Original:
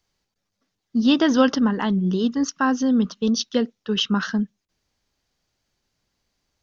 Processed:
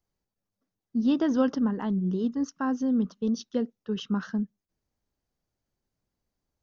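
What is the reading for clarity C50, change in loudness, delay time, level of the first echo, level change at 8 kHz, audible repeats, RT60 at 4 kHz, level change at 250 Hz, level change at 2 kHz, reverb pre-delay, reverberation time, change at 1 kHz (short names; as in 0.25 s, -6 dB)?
none, -7.0 dB, none, none, n/a, none, none, -6.0 dB, -13.5 dB, none, none, -10.0 dB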